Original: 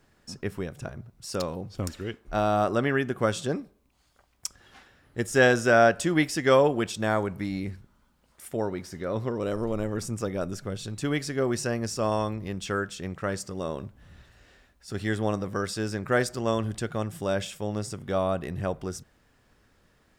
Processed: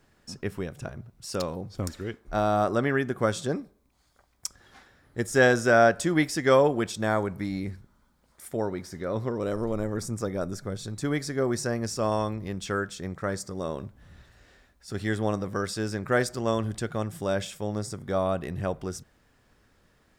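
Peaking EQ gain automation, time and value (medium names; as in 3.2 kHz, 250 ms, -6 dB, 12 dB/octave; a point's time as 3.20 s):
peaking EQ 2.8 kHz 0.29 oct
0 dB
from 1.50 s -7.5 dB
from 9.79 s -14.5 dB
from 11.76 s -5 dB
from 12.98 s -14 dB
from 13.64 s -4 dB
from 17.71 s -12 dB
from 18.26 s -1 dB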